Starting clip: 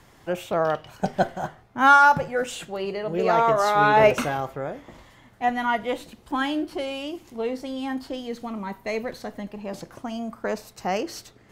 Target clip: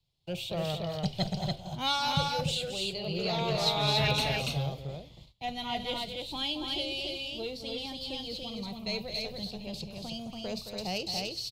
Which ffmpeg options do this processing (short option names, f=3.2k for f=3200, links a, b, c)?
-filter_complex "[0:a]agate=range=-24dB:threshold=-45dB:ratio=16:detection=peak,firequalizer=gain_entry='entry(150,0);entry(260,-21);entry(1700,-28);entry(2400,-5);entry(4100,9);entry(6000,-6)':delay=0.05:min_phase=1,acrossover=split=360|940|6000[a][b][c][d];[b]aeval=exprs='0.0237*sin(PI/2*2.82*val(0)/0.0237)':c=same[e];[a][e][c][d]amix=inputs=4:normalize=0,aecho=1:1:218.7|285.7:0.355|0.708,volume=1.5dB"